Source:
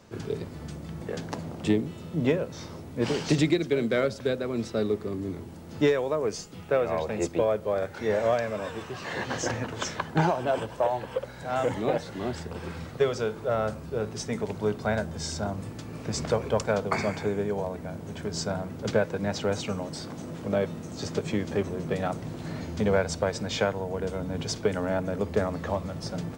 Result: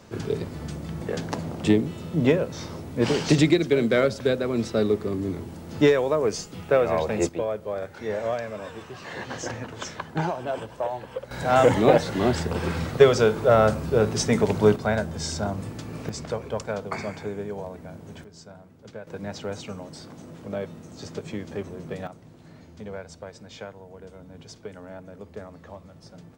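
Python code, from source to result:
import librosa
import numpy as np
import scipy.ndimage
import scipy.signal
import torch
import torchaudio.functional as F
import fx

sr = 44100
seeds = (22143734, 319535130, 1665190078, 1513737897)

y = fx.gain(x, sr, db=fx.steps((0.0, 4.5), (7.29, -3.0), (11.31, 9.5), (14.76, 3.0), (16.09, -4.0), (18.24, -15.5), (19.07, -5.0), (22.07, -13.0)))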